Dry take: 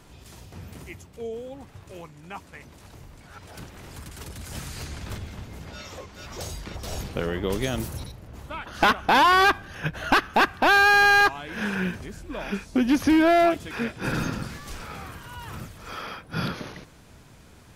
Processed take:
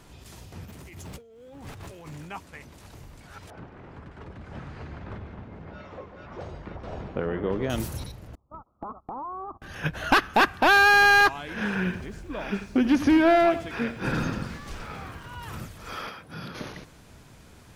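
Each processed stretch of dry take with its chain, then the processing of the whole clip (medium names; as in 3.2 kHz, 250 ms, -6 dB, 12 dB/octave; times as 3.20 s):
0.65–2.31 s: companding laws mixed up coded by mu + compressor with a negative ratio -44 dBFS
3.50–7.70 s: low-pass 1.5 kHz + bass shelf 70 Hz -10 dB + delay 146 ms -10.5 dB
8.35–9.62 s: gate -34 dBFS, range -27 dB + Chebyshev low-pass 1.3 kHz, order 8 + compression 4:1, threshold -37 dBFS
11.53–15.43 s: low-pass 3.8 kHz 6 dB/octave + bit-crushed delay 87 ms, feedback 35%, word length 9-bit, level -13 dB
16.09–16.55 s: compression 2.5:1, threshold -39 dBFS + high-pass 75 Hz
whole clip: none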